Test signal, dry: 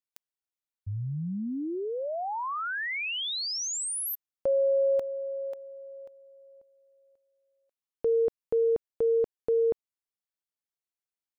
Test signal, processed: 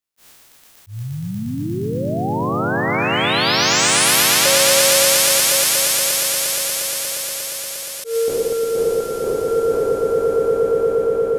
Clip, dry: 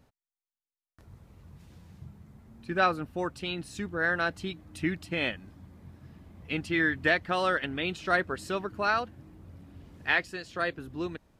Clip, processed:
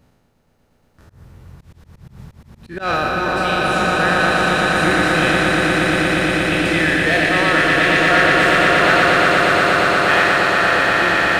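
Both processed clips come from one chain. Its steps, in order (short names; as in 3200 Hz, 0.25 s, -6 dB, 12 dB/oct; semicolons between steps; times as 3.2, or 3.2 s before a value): spectral trails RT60 2.08 s; in parallel at -3.5 dB: overloaded stage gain 24.5 dB; on the sum: swelling echo 0.118 s, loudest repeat 8, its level -5 dB; auto swell 0.124 s; gain +1 dB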